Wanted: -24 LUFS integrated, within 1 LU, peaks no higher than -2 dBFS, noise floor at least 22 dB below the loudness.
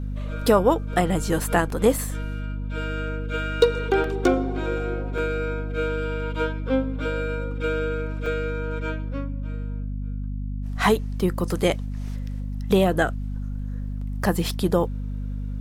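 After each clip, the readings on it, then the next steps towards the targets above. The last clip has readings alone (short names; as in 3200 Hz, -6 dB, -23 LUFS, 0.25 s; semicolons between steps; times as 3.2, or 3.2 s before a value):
dropouts 4; longest dropout 2.7 ms; hum 50 Hz; harmonics up to 250 Hz; hum level -26 dBFS; loudness -25.5 LUFS; peak -4.0 dBFS; loudness target -24.0 LUFS
-> interpolate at 1.7/4.04/5.18/8.26, 2.7 ms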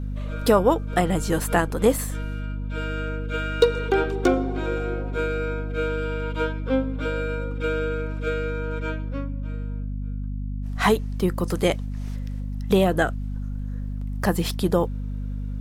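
dropouts 0; hum 50 Hz; harmonics up to 250 Hz; hum level -26 dBFS
-> de-hum 50 Hz, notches 5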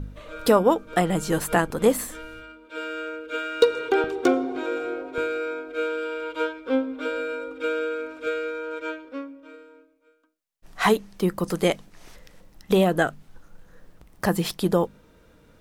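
hum none; loudness -25.0 LUFS; peak -4.0 dBFS; loudness target -24.0 LUFS
-> gain +1 dB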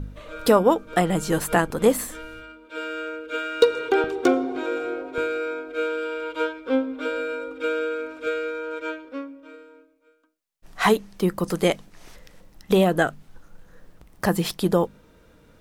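loudness -24.0 LUFS; peak -3.0 dBFS; noise floor -56 dBFS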